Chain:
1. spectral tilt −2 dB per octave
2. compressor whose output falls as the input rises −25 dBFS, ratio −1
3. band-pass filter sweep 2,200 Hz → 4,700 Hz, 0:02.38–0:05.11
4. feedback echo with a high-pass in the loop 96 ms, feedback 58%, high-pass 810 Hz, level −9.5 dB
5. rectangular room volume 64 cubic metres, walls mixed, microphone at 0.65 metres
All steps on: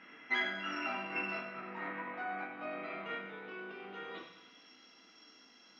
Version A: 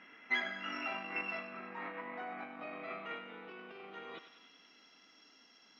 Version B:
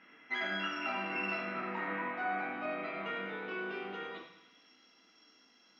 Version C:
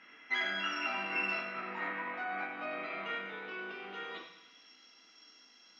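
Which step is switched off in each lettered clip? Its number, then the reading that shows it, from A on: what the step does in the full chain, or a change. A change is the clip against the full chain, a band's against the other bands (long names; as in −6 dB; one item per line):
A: 5, change in momentary loudness spread +2 LU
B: 2, change in crest factor −4.5 dB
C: 1, 4 kHz band +3.5 dB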